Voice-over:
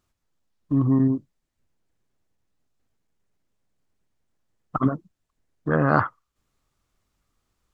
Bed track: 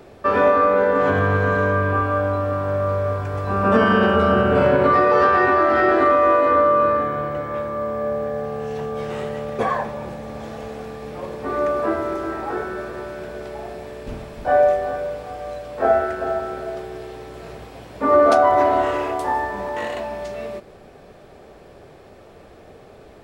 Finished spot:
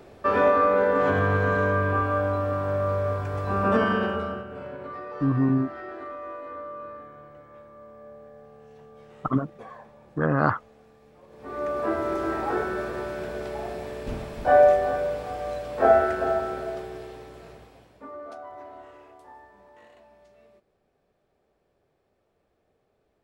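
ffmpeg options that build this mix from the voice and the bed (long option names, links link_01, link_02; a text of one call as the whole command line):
ffmpeg -i stem1.wav -i stem2.wav -filter_complex "[0:a]adelay=4500,volume=-2.5dB[link_01];[1:a]volume=17.5dB,afade=type=out:start_time=3.57:duration=0.89:silence=0.125893,afade=type=in:start_time=11.28:duration=1.05:silence=0.0841395,afade=type=out:start_time=16.16:duration=1.96:silence=0.0501187[link_02];[link_01][link_02]amix=inputs=2:normalize=0" out.wav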